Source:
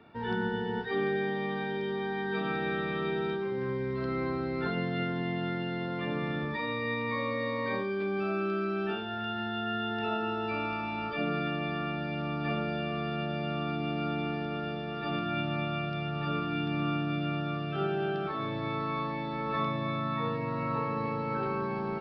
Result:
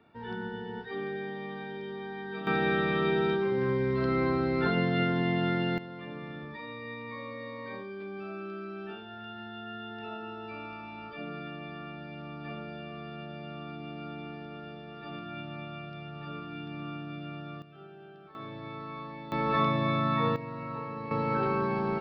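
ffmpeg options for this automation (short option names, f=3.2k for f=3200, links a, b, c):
-af "asetnsamples=n=441:p=0,asendcmd='2.47 volume volume 4.5dB;5.78 volume volume -8.5dB;17.62 volume volume -19dB;18.35 volume volume -8dB;19.32 volume volume 4.5dB;20.36 volume volume -6dB;21.11 volume volume 3.5dB',volume=-6dB"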